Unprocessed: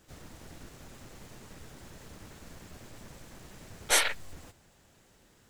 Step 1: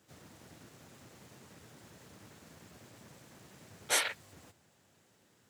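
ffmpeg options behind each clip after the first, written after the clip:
-af "highpass=f=91:w=0.5412,highpass=f=91:w=1.3066,volume=0.562"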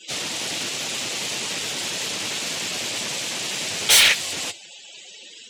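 -filter_complex "[0:a]asplit=2[s0][s1];[s1]highpass=f=720:p=1,volume=44.7,asoftclip=type=tanh:threshold=0.168[s2];[s0][s2]amix=inputs=2:normalize=0,lowpass=f=6900:p=1,volume=0.501,highshelf=f=2100:t=q:w=1.5:g=8,afftdn=nr=35:nf=-40,volume=1.26"

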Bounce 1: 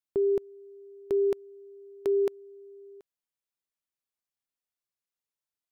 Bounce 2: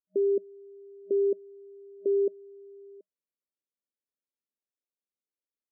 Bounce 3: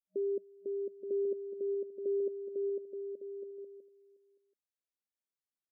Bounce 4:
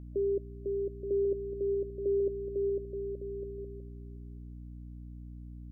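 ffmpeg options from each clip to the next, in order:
-af "afftfilt=real='re*between(b*sr/4096,190,620)':imag='im*between(b*sr/4096,190,620)':win_size=4096:overlap=0.75"
-af "aecho=1:1:500|875|1156|1367|1525:0.631|0.398|0.251|0.158|0.1,volume=0.376"
-af "aeval=exprs='val(0)+0.00447*(sin(2*PI*60*n/s)+sin(2*PI*2*60*n/s)/2+sin(2*PI*3*60*n/s)/3+sin(2*PI*4*60*n/s)/4+sin(2*PI*5*60*n/s)/5)':c=same,volume=1.5"

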